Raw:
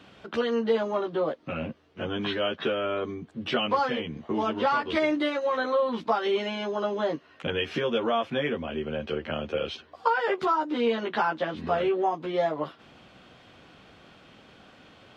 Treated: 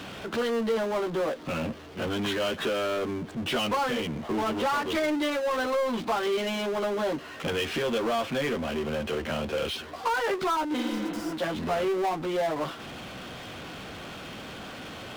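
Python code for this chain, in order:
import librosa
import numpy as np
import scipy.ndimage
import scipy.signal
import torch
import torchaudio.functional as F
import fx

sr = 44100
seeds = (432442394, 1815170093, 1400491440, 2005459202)

y = fx.power_curve(x, sr, exponent=0.5)
y = fx.spec_repair(y, sr, seeds[0], start_s=10.8, length_s=0.5, low_hz=260.0, high_hz=4500.0, source='both')
y = F.gain(torch.from_numpy(y), -8.0).numpy()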